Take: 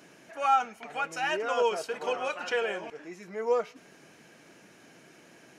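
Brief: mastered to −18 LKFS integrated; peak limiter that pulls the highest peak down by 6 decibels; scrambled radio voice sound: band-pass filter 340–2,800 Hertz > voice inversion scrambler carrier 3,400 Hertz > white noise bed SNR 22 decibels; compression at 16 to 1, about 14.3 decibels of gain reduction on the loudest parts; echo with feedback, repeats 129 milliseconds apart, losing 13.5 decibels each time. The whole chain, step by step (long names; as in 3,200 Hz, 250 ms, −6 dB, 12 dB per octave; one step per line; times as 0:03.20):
downward compressor 16 to 1, threshold −34 dBFS
brickwall limiter −31 dBFS
band-pass filter 340–2,800 Hz
repeating echo 129 ms, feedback 21%, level −13.5 dB
voice inversion scrambler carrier 3,400 Hz
white noise bed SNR 22 dB
level +21 dB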